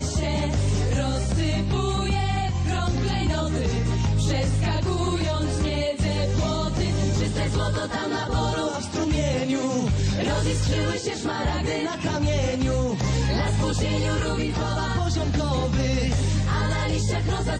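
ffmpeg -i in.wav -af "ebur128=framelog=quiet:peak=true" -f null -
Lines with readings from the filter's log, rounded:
Integrated loudness:
  I:         -24.4 LUFS
  Threshold: -34.4 LUFS
Loudness range:
  LRA:         0.6 LU
  Threshold: -44.4 LUFS
  LRA low:   -24.8 LUFS
  LRA high:  -24.2 LUFS
True peak:
  Peak:      -13.0 dBFS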